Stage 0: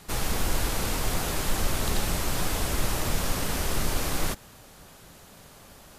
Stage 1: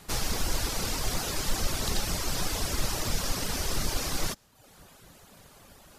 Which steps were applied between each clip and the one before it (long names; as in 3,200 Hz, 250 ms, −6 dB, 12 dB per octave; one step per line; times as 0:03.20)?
reverb reduction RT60 0.75 s
dynamic equaliser 5,300 Hz, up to +7 dB, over −53 dBFS, Q 1.4
level −1.5 dB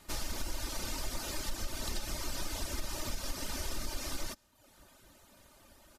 comb filter 3.3 ms, depth 53%
downward compressor, threshold −23 dBFS, peak gain reduction 6.5 dB
level −7.5 dB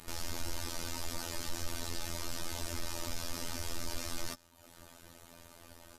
phases set to zero 84.6 Hz
brickwall limiter −25 dBFS, peak gain reduction 9 dB
level +7 dB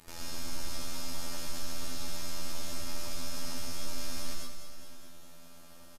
repeating echo 206 ms, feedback 60%, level −8 dB
reverb whose tail is shaped and stops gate 160 ms rising, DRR −2 dB
level −5 dB